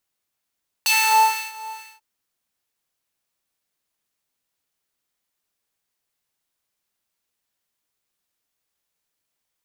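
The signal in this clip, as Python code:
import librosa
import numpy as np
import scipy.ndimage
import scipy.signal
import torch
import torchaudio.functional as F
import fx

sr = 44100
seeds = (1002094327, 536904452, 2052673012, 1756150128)

y = fx.sub_patch_wobble(sr, seeds[0], note=81, wave='square', wave2='saw', interval_st=0, level2_db=-9.0, sub_db=-11.5, noise_db=-8.5, kind='highpass', cutoff_hz=1100.0, q=1.6, env_oct=2.0, env_decay_s=0.07, env_sustain_pct=10, attack_ms=1.7, decay_s=0.66, sustain_db=-23.5, release_s=0.21, note_s=0.93, lfo_hz=2.2, wobble_oct=0.6)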